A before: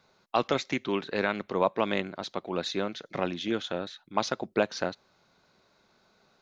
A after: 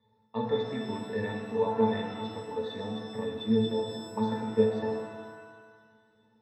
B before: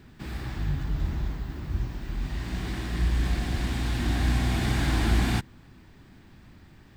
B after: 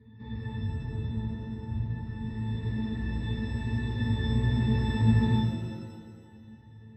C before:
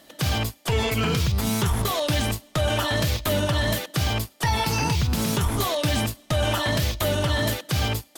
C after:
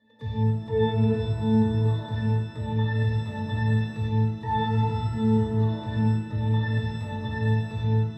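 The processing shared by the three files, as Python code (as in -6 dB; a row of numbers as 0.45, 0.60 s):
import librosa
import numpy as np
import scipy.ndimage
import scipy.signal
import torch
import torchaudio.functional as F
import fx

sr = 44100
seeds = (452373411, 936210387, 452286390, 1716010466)

y = fx.octave_resonator(x, sr, note='A', decay_s=0.38)
y = fx.rev_shimmer(y, sr, seeds[0], rt60_s=1.5, semitones=7, shimmer_db=-8, drr_db=2.0)
y = y * 10.0 ** (-12 / 20.0) / np.max(np.abs(y))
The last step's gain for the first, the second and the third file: +14.5, +13.0, +6.0 dB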